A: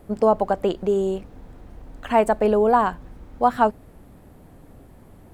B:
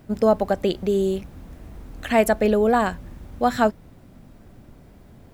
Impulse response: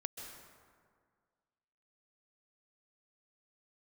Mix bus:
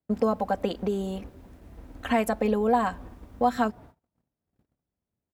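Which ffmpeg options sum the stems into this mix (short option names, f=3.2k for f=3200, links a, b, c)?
-filter_complex "[0:a]agate=range=-13dB:threshold=-38dB:ratio=16:detection=peak,lowpass=3.6k,acompressor=threshold=-25dB:ratio=4,volume=0dB,asplit=2[a][b];[b]volume=-23dB[c];[1:a]adelay=3.5,volume=-8dB[d];[2:a]atrim=start_sample=2205[e];[c][e]afir=irnorm=-1:irlink=0[f];[a][d][f]amix=inputs=3:normalize=0,agate=range=-32dB:threshold=-48dB:ratio=16:detection=peak,highpass=54"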